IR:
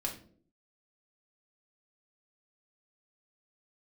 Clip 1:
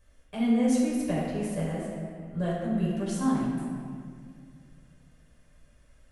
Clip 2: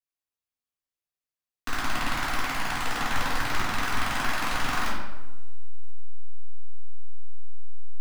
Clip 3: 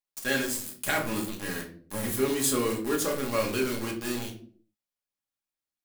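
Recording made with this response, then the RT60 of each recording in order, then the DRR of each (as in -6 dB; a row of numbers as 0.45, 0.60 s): 3; 2.1 s, 1.0 s, not exponential; -7.5, -12.0, -1.0 dB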